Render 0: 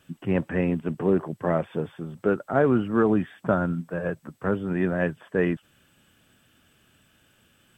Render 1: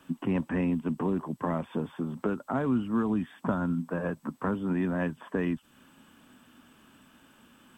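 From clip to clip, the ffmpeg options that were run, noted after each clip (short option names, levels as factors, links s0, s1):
-filter_complex "[0:a]equalizer=f=100:t=o:w=0.67:g=-7,equalizer=f=250:t=o:w=0.67:g=12,equalizer=f=1000:t=o:w=0.67:g=12,acrossover=split=130|3000[s0][s1][s2];[s1]acompressor=threshold=0.0355:ratio=6[s3];[s0][s3][s2]amix=inputs=3:normalize=0"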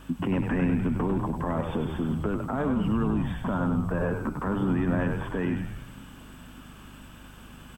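-filter_complex "[0:a]alimiter=level_in=1.41:limit=0.0631:level=0:latency=1:release=70,volume=0.708,aeval=exprs='val(0)+0.00178*(sin(2*PI*50*n/s)+sin(2*PI*2*50*n/s)/2+sin(2*PI*3*50*n/s)/3+sin(2*PI*4*50*n/s)/4+sin(2*PI*5*50*n/s)/5)':c=same,asplit=2[s0][s1];[s1]asplit=8[s2][s3][s4][s5][s6][s7][s8][s9];[s2]adelay=99,afreqshift=-75,volume=0.562[s10];[s3]adelay=198,afreqshift=-150,volume=0.331[s11];[s4]adelay=297,afreqshift=-225,volume=0.195[s12];[s5]adelay=396,afreqshift=-300,volume=0.116[s13];[s6]adelay=495,afreqshift=-375,volume=0.0684[s14];[s7]adelay=594,afreqshift=-450,volume=0.0403[s15];[s8]adelay=693,afreqshift=-525,volume=0.0237[s16];[s9]adelay=792,afreqshift=-600,volume=0.014[s17];[s10][s11][s12][s13][s14][s15][s16][s17]amix=inputs=8:normalize=0[s18];[s0][s18]amix=inputs=2:normalize=0,volume=2.24"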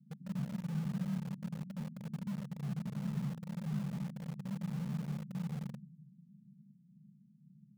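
-filter_complex "[0:a]aeval=exprs='abs(val(0))':c=same,asuperpass=centerf=170:order=8:qfactor=2.2,asplit=2[s0][s1];[s1]acrusher=bits=6:mix=0:aa=0.000001,volume=0.422[s2];[s0][s2]amix=inputs=2:normalize=0"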